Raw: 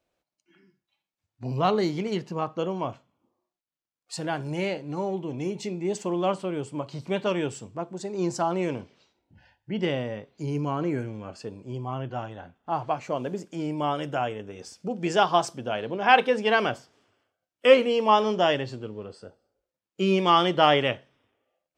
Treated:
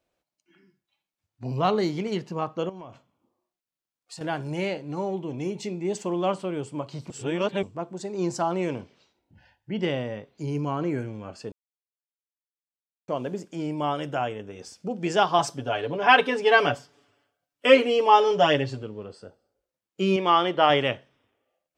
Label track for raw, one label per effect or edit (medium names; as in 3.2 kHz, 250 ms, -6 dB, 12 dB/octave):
2.690000	4.210000	compression, threshold -38 dBFS
7.100000	7.630000	reverse
11.520000	13.080000	mute
15.380000	18.830000	comb 7 ms, depth 87%
20.160000	20.700000	tone controls bass -8 dB, treble -10 dB